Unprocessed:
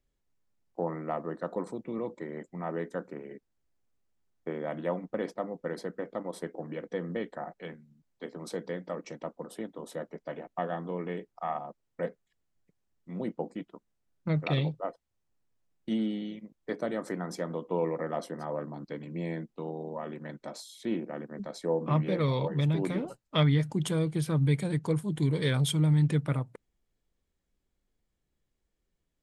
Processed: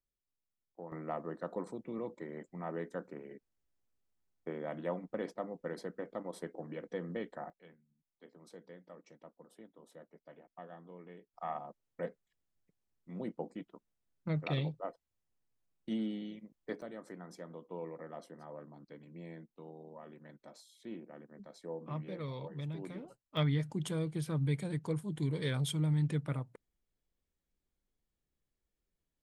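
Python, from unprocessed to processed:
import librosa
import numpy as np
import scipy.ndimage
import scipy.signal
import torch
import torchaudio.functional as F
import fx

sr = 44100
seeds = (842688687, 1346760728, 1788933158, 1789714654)

y = fx.gain(x, sr, db=fx.steps((0.0, -15.5), (0.92, -5.5), (7.5, -17.0), (11.34, -6.0), (16.82, -13.5), (23.37, -7.0)))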